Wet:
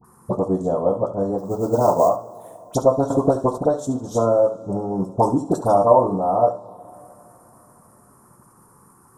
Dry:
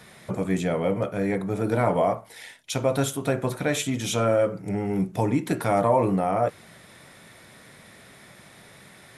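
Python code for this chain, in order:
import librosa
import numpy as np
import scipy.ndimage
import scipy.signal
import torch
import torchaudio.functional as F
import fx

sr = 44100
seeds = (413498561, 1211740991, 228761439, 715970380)

y = fx.transient(x, sr, attack_db=7, sustain_db=-8)
y = fx.high_shelf(y, sr, hz=3500.0, db=9.5, at=(5.0, 5.7))
y = fx.dispersion(y, sr, late='highs', ms=45.0, hz=1200.0)
y = fx.sample_hold(y, sr, seeds[0], rate_hz=7500.0, jitter_pct=20, at=(1.38, 2.08), fade=0.02)
y = fx.env_phaser(y, sr, low_hz=560.0, high_hz=2300.0, full_db=-25.0)
y = fx.curve_eq(y, sr, hz=(180.0, 1100.0, 2100.0, 3800.0, 9400.0), db=(0, 10, -28, -12, 3))
y = y + 10.0 ** (-12.5 / 20.0) * np.pad(y, (int(70 * sr / 1000.0), 0))[:len(y)]
y = fx.rev_double_slope(y, sr, seeds[1], early_s=0.2, late_s=3.6, knee_db=-20, drr_db=10.5)
y = fx.band_squash(y, sr, depth_pct=100, at=(3.1, 3.58))
y = y * librosa.db_to_amplitude(-1.5)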